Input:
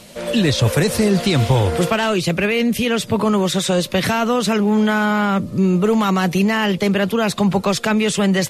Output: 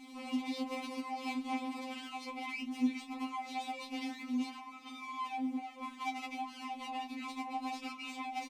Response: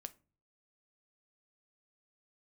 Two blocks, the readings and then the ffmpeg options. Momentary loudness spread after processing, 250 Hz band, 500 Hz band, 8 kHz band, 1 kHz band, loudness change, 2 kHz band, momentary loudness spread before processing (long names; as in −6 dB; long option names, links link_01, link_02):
6 LU, −21.5 dB, −33.0 dB, −27.5 dB, −16.0 dB, −22.0 dB, −22.0 dB, 2 LU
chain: -filter_complex "[0:a]lowshelf=frequency=430:gain=6.5,aeval=exprs='(tanh(6.31*val(0)+0.1)-tanh(0.1))/6.31':channel_layout=same,bass=frequency=250:gain=-13,treble=frequency=4000:gain=8,asplit=2[link_01][link_02];[link_02]adelay=23,volume=-5dB[link_03];[link_01][link_03]amix=inputs=2:normalize=0,acrossover=split=7900[link_04][link_05];[link_05]acompressor=threshold=-36dB:ratio=4:attack=1:release=60[link_06];[link_04][link_06]amix=inputs=2:normalize=0,bandreject=frequency=1200:width=11,acrossover=split=1400|4100[link_07][link_08][link_09];[link_07]acompressor=threshold=-25dB:ratio=4[link_10];[link_08]acompressor=threshold=-39dB:ratio=4[link_11];[link_09]acompressor=threshold=-29dB:ratio=4[link_12];[link_10][link_11][link_12]amix=inputs=3:normalize=0,bandreject=frequency=362.8:width_type=h:width=4,bandreject=frequency=725.6:width_type=h:width=4,bandreject=frequency=1088.4:width_type=h:width=4,bandreject=frequency=1451.2:width_type=h:width=4,bandreject=frequency=1814:width_type=h:width=4,acrusher=bits=4:dc=4:mix=0:aa=0.000001,asplit=3[link_13][link_14][link_15];[link_13]bandpass=frequency=300:width_type=q:width=8,volume=0dB[link_16];[link_14]bandpass=frequency=870:width_type=q:width=8,volume=-6dB[link_17];[link_15]bandpass=frequency=2240:width_type=q:width=8,volume=-9dB[link_18];[link_16][link_17][link_18]amix=inputs=3:normalize=0,afftfilt=real='re*3.46*eq(mod(b,12),0)':imag='im*3.46*eq(mod(b,12),0)':win_size=2048:overlap=0.75,volume=11dB"